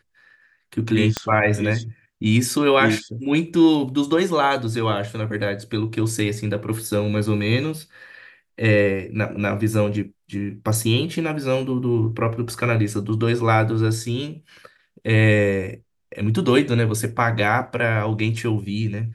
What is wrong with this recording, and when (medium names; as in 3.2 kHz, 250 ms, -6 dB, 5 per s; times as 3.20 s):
1.17 s: pop -7 dBFS